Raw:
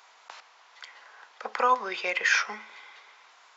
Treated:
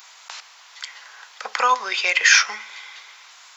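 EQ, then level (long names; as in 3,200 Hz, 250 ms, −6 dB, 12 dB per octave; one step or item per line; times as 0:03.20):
spectral tilt +4.5 dB per octave
+4.5 dB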